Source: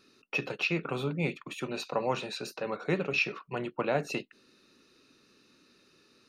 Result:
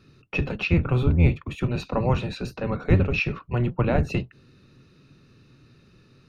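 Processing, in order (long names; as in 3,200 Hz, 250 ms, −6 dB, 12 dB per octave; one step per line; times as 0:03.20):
sub-octave generator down 1 octave, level +4 dB
bass and treble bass +7 dB, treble −8 dB
level +3.5 dB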